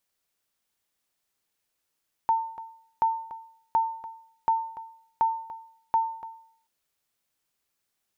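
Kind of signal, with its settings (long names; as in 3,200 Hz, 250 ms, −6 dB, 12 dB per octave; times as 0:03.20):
ping with an echo 902 Hz, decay 0.61 s, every 0.73 s, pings 6, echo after 0.29 s, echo −15 dB −16 dBFS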